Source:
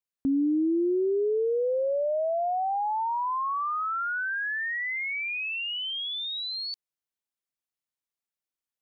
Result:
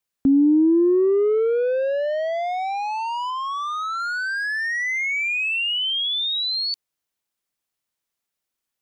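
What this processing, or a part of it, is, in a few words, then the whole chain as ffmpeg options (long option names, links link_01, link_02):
one-band saturation: -filter_complex "[0:a]asettb=1/sr,asplit=3[link_01][link_02][link_03];[link_01]atrim=end=3.304[link_04];[link_02]atrim=start=3.3:end=4,asetpts=PTS-STARTPTS,afade=type=in:duration=0.004:curve=qsin,afade=type=out:start_time=0.696:duration=0.004:curve=qsin,equalizer=frequency=180:width=0.34:gain=-8.5[link_05];[link_03]atrim=start=3.996[link_06];[link_04][link_05]acrossfade=duration=0.004:curve1=hsin:curve2=qsin[link_07];[link_07][link_06]acrossfade=duration=0.004:curve1=qsin:curve2=hsin,acrossover=split=430|2400[link_08][link_09][link_10];[link_09]asoftclip=type=tanh:threshold=-35.5dB[link_11];[link_08][link_11][link_10]amix=inputs=3:normalize=0,volume=9dB"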